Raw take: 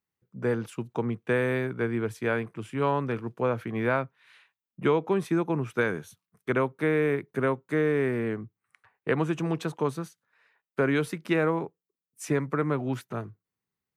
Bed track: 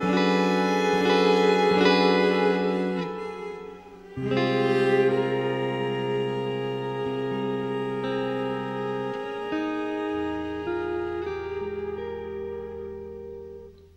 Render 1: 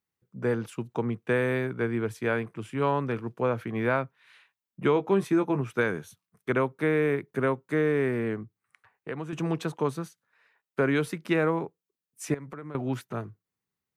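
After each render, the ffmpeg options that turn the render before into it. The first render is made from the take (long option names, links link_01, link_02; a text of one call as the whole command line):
ffmpeg -i in.wav -filter_complex "[0:a]asettb=1/sr,asplit=3[link_01][link_02][link_03];[link_01]atrim=end=4.944[link_04];[link_02]atrim=start=4.94:end=5.61,asetpts=PTS-STARTPTS,afade=type=in:duration=0.004:curve=qsin,afade=type=out:start_time=0.666:duration=0.004:curve=qsin,asplit=2[link_05][link_06];[link_06]adelay=15,volume=-7dB[link_07];[link_05][link_07]amix=inputs=2:normalize=0,atrim=end_sample=29547[link_08];[link_03]atrim=start=5.606[link_09];[link_04][link_08]acrossfade=duration=0.004:curve1=hsin:curve2=qsin[link_10];[link_10][link_09]acrossfade=duration=0.004:curve1=qsin:curve2=hsin,asettb=1/sr,asplit=3[link_11][link_12][link_13];[link_11]atrim=end=8.434[link_14];[link_12]atrim=start=8.43:end=9.33,asetpts=PTS-STARTPTS,afade=type=in:duration=0.004:curve=qsin,afade=type=out:start_time=0.896:duration=0.004:curve=qsin,acompressor=threshold=-47dB:ratio=1.5:attack=3.2:release=140:knee=1:detection=peak[link_15];[link_13]atrim=start=9.326[link_16];[link_14][link_15]acrossfade=duration=0.004:curve1=hsin:curve2=qsin[link_17];[link_17][link_16]acrossfade=duration=0.004:curve1=qsin:curve2=hsin,asettb=1/sr,asplit=3[link_18][link_19][link_20];[link_18]atrim=end=12.344[link_21];[link_19]atrim=start=12.34:end=12.75,asetpts=PTS-STARTPTS,afade=type=in:duration=0.004:curve=qsin,afade=type=out:start_time=0.406:duration=0.004:curve=qsin,acompressor=threshold=-37dB:ratio=6:attack=3.2:release=140:knee=1:detection=peak[link_22];[link_20]atrim=start=12.746[link_23];[link_21][link_22]acrossfade=duration=0.004:curve1=hsin:curve2=qsin[link_24];[link_24][link_23]acrossfade=duration=0.004:curve1=qsin:curve2=hsin" out.wav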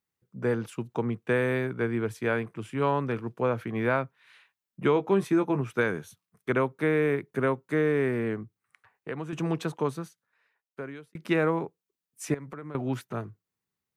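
ffmpeg -i in.wav -filter_complex "[0:a]asplit=2[link_01][link_02];[link_01]atrim=end=11.15,asetpts=PTS-STARTPTS,afade=type=out:start_time=9.73:duration=1.42[link_03];[link_02]atrim=start=11.15,asetpts=PTS-STARTPTS,afade=type=in:duration=0.004:curve=hsin[link_04];[link_03][link_04]concat=n=2:v=0:a=1" out.wav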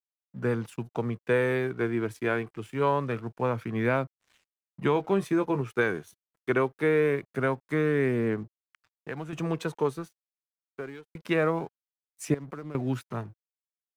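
ffmpeg -i in.wav -af "aeval=exprs='sgn(val(0))*max(abs(val(0))-0.00178,0)':channel_layout=same,aphaser=in_gain=1:out_gain=1:delay=3.2:decay=0.29:speed=0.24:type=triangular" out.wav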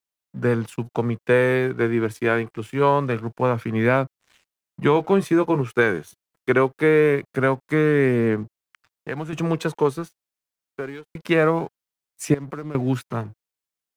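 ffmpeg -i in.wav -af "volume=7dB" out.wav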